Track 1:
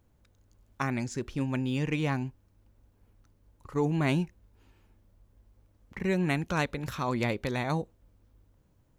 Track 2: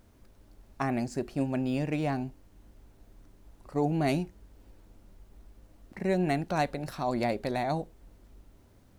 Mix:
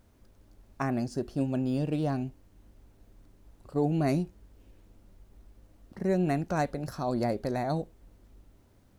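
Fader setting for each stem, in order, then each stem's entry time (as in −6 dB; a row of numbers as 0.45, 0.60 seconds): −8.5, −2.5 decibels; 0.00, 0.00 seconds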